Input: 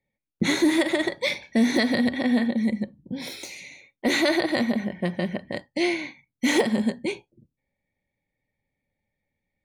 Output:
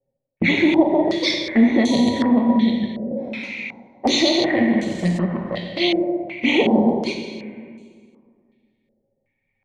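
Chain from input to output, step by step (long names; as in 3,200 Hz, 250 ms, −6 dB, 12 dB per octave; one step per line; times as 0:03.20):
0:04.82–0:05.54: converter with a step at zero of −37 dBFS
dynamic equaliser 1,400 Hz, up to −7 dB, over −45 dBFS, Q 2.2
flanger swept by the level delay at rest 7.6 ms, full sweep at −19.5 dBFS
0:01.90–0:02.30: steady tone 970 Hz −34 dBFS
on a send at −1.5 dB: convolution reverb RT60 2.0 s, pre-delay 8 ms
on the sum: low-pass on a step sequencer 2.7 Hz 580–7,400 Hz
level +3.5 dB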